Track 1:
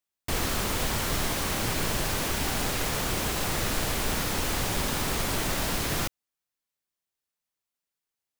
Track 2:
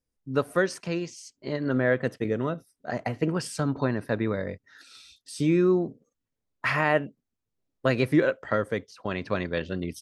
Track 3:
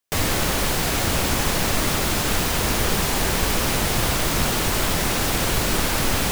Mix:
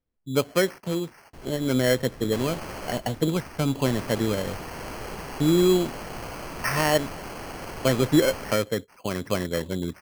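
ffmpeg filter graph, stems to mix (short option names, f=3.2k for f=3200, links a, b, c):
-filter_complex "[0:a]adelay=1050,volume=-15.5dB[a];[1:a]volume=2.5dB[b];[2:a]asplit=2[c][d];[d]highpass=f=720:p=1,volume=12dB,asoftclip=type=tanh:threshold=-7dB[e];[c][e]amix=inputs=2:normalize=0,lowpass=f=1.4k:p=1,volume=-6dB,adelay=2200,volume=-12dB,asplit=3[f][g][h];[f]atrim=end=2.99,asetpts=PTS-STARTPTS,afade=t=out:st=2.986:d=0.004:c=hsin[i];[g]atrim=start=2.99:end=3.85,asetpts=PTS-STARTPTS,volume=0[j];[h]atrim=start=3.85,asetpts=PTS-STARTPTS,afade=t=in:d=0.004:c=hsin[k];[i][j][k]concat=n=3:v=0:a=1[l];[a][b][l]amix=inputs=3:normalize=0,highshelf=f=2.7k:g=-11.5,acrusher=samples=12:mix=1:aa=0.000001"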